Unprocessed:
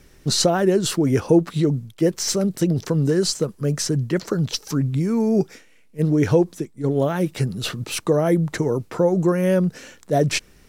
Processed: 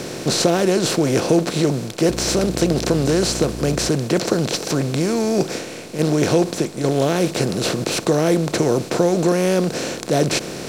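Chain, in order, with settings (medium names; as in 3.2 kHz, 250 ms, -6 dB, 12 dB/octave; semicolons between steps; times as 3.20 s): spectral levelling over time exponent 0.4; bass shelf 63 Hz -9.5 dB; 2.08–3.88 s: mains buzz 60 Hz, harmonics 6, -26 dBFS -3 dB/octave; trim -3.5 dB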